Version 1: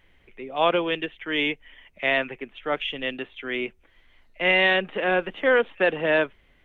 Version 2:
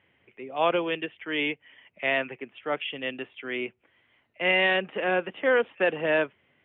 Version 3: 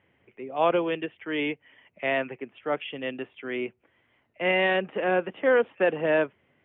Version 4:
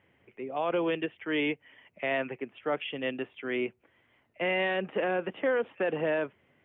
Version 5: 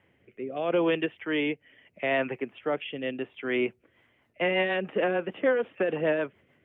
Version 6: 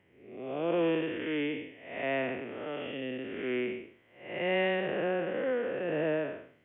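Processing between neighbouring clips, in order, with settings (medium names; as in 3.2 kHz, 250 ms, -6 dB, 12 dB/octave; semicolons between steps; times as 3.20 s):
elliptic band-pass 100–3000 Hz, stop band 40 dB; trim -2.5 dB
treble shelf 2 kHz -10 dB; trim +2.5 dB
peak limiter -20 dBFS, peak gain reduction 10 dB
rotary cabinet horn 0.75 Hz, later 6.7 Hz, at 3.54 s; trim +4.5 dB
spectral blur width 289 ms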